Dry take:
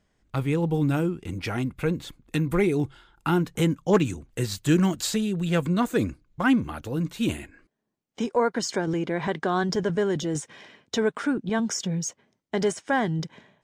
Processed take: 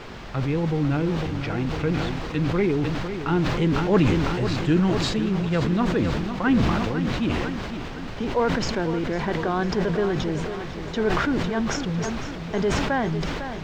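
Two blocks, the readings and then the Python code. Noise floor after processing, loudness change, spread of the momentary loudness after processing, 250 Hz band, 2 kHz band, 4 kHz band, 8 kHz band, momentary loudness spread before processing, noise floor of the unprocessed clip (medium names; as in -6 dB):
-33 dBFS, +2.0 dB, 8 LU, +2.0 dB, +2.5 dB, +2.5 dB, -5.5 dB, 9 LU, -75 dBFS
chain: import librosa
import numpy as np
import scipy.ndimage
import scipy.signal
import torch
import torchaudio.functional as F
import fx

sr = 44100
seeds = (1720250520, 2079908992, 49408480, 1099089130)

y = fx.dmg_noise_colour(x, sr, seeds[0], colour='pink', level_db=-36.0)
y = fx.air_absorb(y, sr, metres=190.0)
y = fx.echo_feedback(y, sr, ms=503, feedback_pct=58, wet_db=-10)
y = fx.sustainer(y, sr, db_per_s=24.0)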